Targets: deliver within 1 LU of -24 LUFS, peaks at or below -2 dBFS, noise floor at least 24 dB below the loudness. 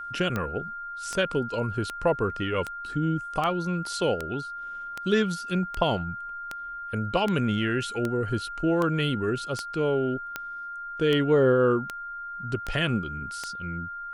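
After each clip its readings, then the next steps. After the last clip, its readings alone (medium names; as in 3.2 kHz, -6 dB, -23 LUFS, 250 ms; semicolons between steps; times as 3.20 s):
clicks found 18; steady tone 1.4 kHz; tone level -34 dBFS; loudness -27.5 LUFS; peak level -8.5 dBFS; loudness target -24.0 LUFS
-> de-click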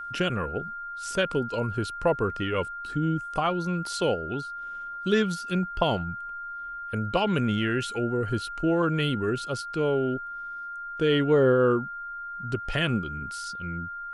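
clicks found 0; steady tone 1.4 kHz; tone level -34 dBFS
-> band-stop 1.4 kHz, Q 30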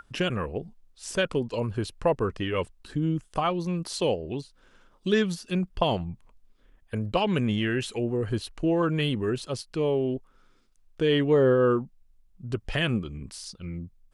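steady tone not found; loudness -27.5 LUFS; peak level -8.5 dBFS; loudness target -24.0 LUFS
-> trim +3.5 dB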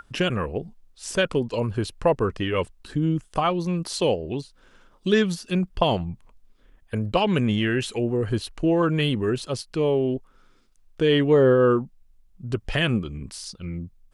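loudness -24.0 LUFS; peak level -5.0 dBFS; noise floor -58 dBFS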